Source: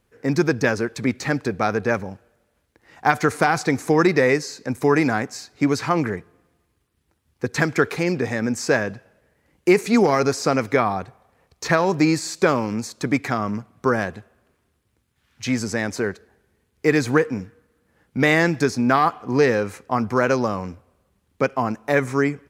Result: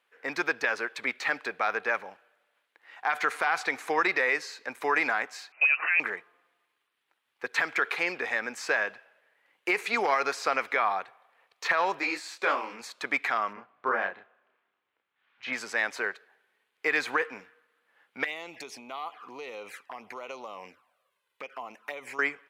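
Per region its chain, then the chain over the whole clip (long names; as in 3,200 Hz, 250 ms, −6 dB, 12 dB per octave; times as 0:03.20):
0:05.52–0:06.00: high-pass filter 230 Hz 6 dB per octave + voice inversion scrambler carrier 2,800 Hz
0:11.99–0:12.81: low shelf with overshoot 180 Hz −8.5 dB, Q 1.5 + micro pitch shift up and down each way 57 cents
0:13.53–0:15.53: head-to-tape spacing loss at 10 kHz 28 dB + double-tracking delay 31 ms −2.5 dB
0:18.24–0:22.19: high-shelf EQ 6,100 Hz +7 dB + downward compressor 8 to 1, threshold −24 dBFS + flanger swept by the level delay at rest 2.1 ms, full sweep at −25.5 dBFS
whole clip: high-pass filter 870 Hz 12 dB per octave; high shelf with overshoot 4,300 Hz −9 dB, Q 1.5; brickwall limiter −14.5 dBFS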